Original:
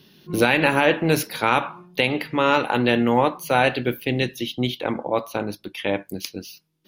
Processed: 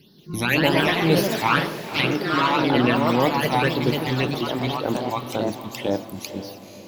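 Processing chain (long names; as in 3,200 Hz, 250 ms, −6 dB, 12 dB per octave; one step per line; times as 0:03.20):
all-pass phaser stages 12, 1.9 Hz, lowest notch 450–2,500 Hz
delay with pitch and tempo change per echo 183 ms, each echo +2 semitones, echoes 3
feedback delay with all-pass diffusion 510 ms, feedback 47%, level −11.5 dB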